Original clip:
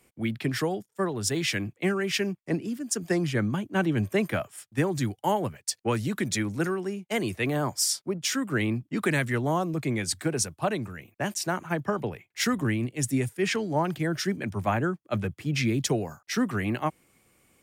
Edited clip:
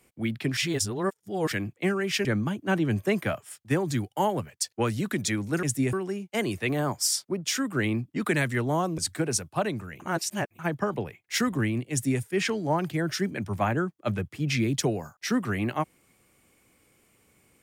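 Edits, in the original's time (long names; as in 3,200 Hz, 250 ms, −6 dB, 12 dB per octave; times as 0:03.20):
0:00.57–0:01.52: reverse
0:02.25–0:03.32: remove
0:09.75–0:10.04: remove
0:11.06–0:11.65: reverse
0:12.97–0:13.27: duplicate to 0:06.70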